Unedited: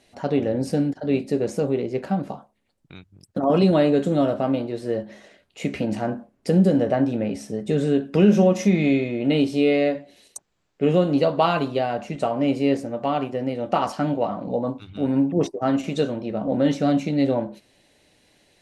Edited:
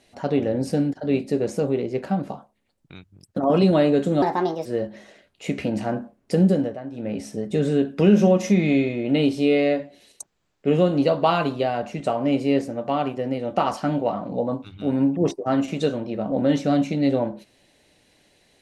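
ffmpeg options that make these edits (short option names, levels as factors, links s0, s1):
-filter_complex "[0:a]asplit=5[s0][s1][s2][s3][s4];[s0]atrim=end=4.224[s5];[s1]atrim=start=4.22:end=4.81,asetpts=PTS-STARTPTS,asetrate=59976,aresample=44100[s6];[s2]atrim=start=4.806:end=6.93,asetpts=PTS-STARTPTS,afade=t=out:st=1.714:d=0.41:c=qsin:silence=0.199526[s7];[s3]atrim=start=6.93:end=7.07,asetpts=PTS-STARTPTS,volume=0.2[s8];[s4]atrim=start=7.07,asetpts=PTS-STARTPTS,afade=t=in:d=0.41:c=qsin:silence=0.199526[s9];[s5][s6]acrossfade=d=0.004:c1=hsin:c2=hsin[s10];[s7][s8][s9]concat=n=3:v=0:a=1[s11];[s10][s11]acrossfade=d=0.004:c1=hsin:c2=hsin"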